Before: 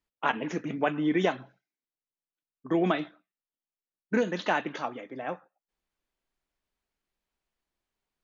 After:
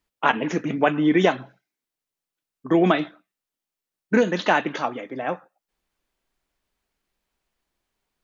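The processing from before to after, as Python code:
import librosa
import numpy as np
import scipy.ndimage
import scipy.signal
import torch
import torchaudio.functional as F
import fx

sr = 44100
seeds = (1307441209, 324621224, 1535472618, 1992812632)

y = F.gain(torch.from_numpy(x), 7.5).numpy()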